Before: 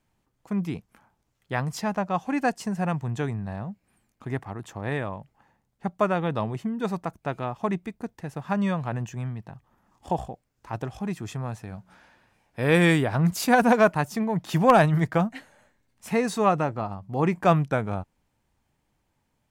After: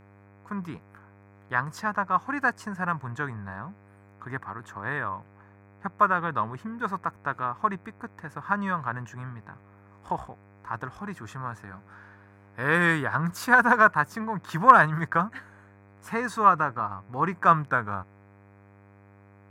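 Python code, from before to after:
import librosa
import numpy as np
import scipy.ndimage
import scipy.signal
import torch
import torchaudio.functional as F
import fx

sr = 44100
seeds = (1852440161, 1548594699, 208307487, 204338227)

y = fx.band_shelf(x, sr, hz=1300.0, db=15.0, octaves=1.1)
y = fx.dmg_buzz(y, sr, base_hz=100.0, harmonics=25, level_db=-47.0, tilt_db=-5, odd_only=False)
y = y * 10.0 ** (-7.0 / 20.0)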